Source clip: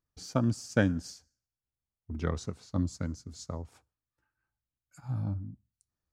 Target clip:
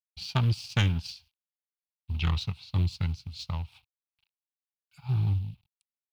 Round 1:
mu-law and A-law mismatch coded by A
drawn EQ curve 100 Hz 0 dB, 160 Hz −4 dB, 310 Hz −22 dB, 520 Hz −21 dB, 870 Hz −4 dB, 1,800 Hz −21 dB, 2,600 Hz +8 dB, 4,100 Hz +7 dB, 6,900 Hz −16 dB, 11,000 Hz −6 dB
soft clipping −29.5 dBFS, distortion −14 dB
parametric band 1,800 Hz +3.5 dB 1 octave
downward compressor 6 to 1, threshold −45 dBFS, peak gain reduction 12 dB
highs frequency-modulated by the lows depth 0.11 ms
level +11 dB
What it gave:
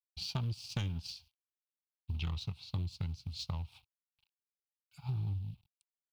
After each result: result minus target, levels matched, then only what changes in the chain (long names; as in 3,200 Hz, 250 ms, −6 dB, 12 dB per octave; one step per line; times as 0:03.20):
downward compressor: peak gain reduction +12 dB; 2,000 Hz band −4.5 dB
remove: downward compressor 6 to 1, threshold −45 dBFS, peak gain reduction 12 dB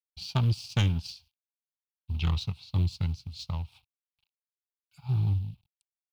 2,000 Hz band −4.5 dB
change: parametric band 1,800 Hz +11 dB 1 octave